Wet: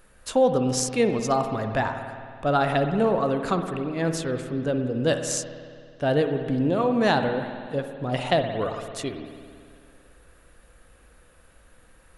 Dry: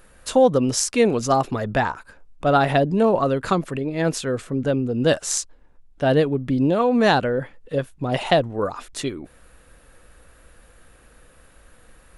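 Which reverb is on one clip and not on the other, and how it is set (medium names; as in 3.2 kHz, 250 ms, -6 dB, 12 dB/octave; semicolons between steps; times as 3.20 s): spring tank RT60 2.2 s, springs 55 ms, chirp 45 ms, DRR 6.5 dB; trim -4.5 dB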